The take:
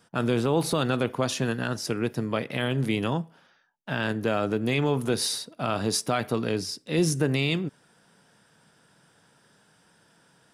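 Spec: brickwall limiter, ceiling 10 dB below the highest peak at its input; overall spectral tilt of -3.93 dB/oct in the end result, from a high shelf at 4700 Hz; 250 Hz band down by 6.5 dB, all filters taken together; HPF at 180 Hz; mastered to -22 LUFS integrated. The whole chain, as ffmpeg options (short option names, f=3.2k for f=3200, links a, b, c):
-af "highpass=180,equalizer=f=250:t=o:g=-7,highshelf=f=4.7k:g=-4,volume=13dB,alimiter=limit=-11dB:level=0:latency=1"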